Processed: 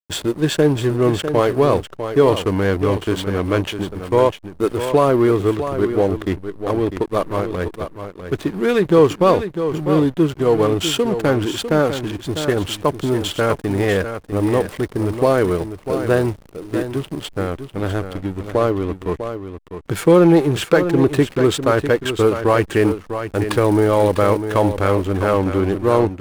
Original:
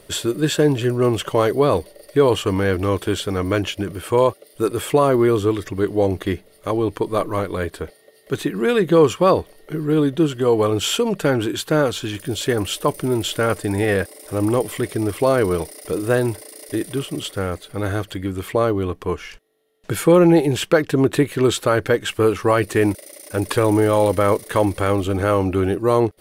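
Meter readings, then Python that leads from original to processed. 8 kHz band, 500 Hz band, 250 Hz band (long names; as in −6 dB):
−2.5 dB, +1.5 dB, +1.5 dB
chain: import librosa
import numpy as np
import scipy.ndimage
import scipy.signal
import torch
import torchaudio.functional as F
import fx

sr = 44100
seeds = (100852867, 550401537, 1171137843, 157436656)

y = fx.backlash(x, sr, play_db=-23.5)
y = y + 10.0 ** (-9.5 / 20.0) * np.pad(y, (int(650 * sr / 1000.0), 0))[:len(y)]
y = y * librosa.db_to_amplitude(1.5)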